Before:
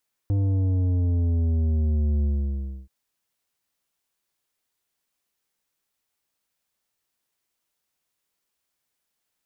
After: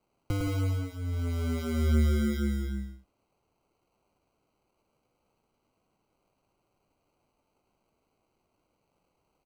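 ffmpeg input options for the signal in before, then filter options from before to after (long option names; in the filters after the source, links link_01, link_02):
-f lavfi -i "aevalsrc='0.0944*clip((2.58-t)/0.65,0,1)*tanh(2.99*sin(2*PI*100*2.58/log(65/100)*(exp(log(65/100)*t/2.58)-1)))/tanh(2.99)':duration=2.58:sample_rate=44100"
-filter_complex "[0:a]aecho=1:1:5.6:0.76,acrossover=split=190[link_01][link_02];[link_02]acrusher=samples=25:mix=1:aa=0.000001[link_03];[link_01][link_03]amix=inputs=2:normalize=0,aecho=1:1:105|169.1:0.631|0.316"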